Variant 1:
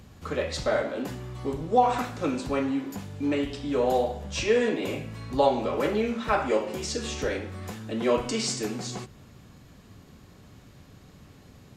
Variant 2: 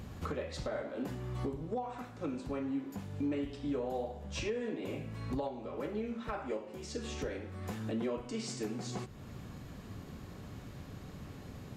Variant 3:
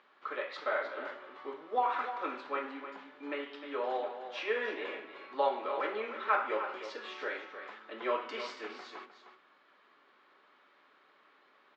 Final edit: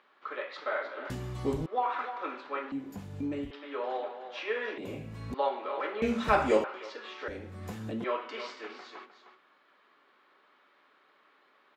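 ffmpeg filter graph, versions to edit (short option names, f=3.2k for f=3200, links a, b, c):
-filter_complex "[0:a]asplit=2[a][b];[1:a]asplit=3[c][d][e];[2:a]asplit=6[f][g][h][i][j][k];[f]atrim=end=1.102[l];[a]atrim=start=1.098:end=1.662[m];[g]atrim=start=1.658:end=2.722[n];[c]atrim=start=2.718:end=3.512[o];[h]atrim=start=3.508:end=4.782[p];[d]atrim=start=4.778:end=5.342[q];[i]atrim=start=5.338:end=6.022[r];[b]atrim=start=6.018:end=6.642[s];[j]atrim=start=6.638:end=7.282[t];[e]atrim=start=7.278:end=8.042[u];[k]atrim=start=8.038[v];[l][m]acrossfade=d=0.004:c1=hsin:c2=hsin[w];[w][n]acrossfade=d=0.004:c1=hsin:c2=hsin[x];[x][o]acrossfade=d=0.004:c1=hsin:c2=hsin[y];[y][p]acrossfade=d=0.004:c1=hsin:c2=hsin[z];[z][q]acrossfade=d=0.004:c1=hsin:c2=hsin[aa];[aa][r]acrossfade=d=0.004:c1=hsin:c2=hsin[ab];[ab][s]acrossfade=d=0.004:c1=hsin:c2=hsin[ac];[ac][t]acrossfade=d=0.004:c1=hsin:c2=hsin[ad];[ad][u]acrossfade=d=0.004:c1=hsin:c2=hsin[ae];[ae][v]acrossfade=d=0.004:c1=hsin:c2=hsin"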